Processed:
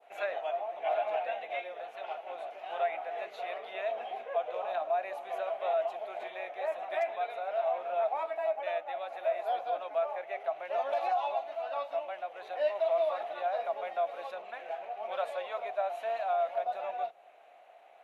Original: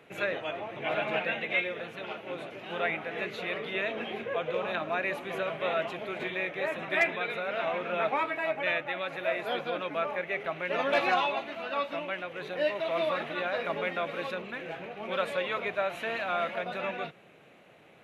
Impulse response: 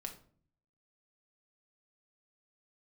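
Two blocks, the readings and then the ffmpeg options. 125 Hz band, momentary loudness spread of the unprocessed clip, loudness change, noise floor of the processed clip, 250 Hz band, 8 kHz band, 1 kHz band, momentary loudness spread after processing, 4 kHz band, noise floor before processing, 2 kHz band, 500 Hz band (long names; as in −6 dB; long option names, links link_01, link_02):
below −30 dB, 8 LU, −2.5 dB, −56 dBFS, below −20 dB, can't be measured, +0.5 dB, 9 LU, −11.0 dB, −56 dBFS, −12.0 dB, −0.5 dB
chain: -af "highpass=frequency=710:width_type=q:width=6.8,alimiter=limit=-12.5dB:level=0:latency=1:release=93,adynamicequalizer=threshold=0.0112:dfrequency=2000:dqfactor=0.7:tfrequency=2000:tqfactor=0.7:attack=5:release=100:ratio=0.375:range=4:mode=cutabove:tftype=bell,volume=-7.5dB"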